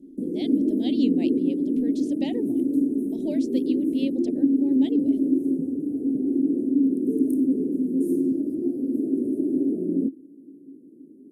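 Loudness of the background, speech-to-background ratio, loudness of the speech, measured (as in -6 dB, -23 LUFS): -24.5 LUFS, -4.5 dB, -29.0 LUFS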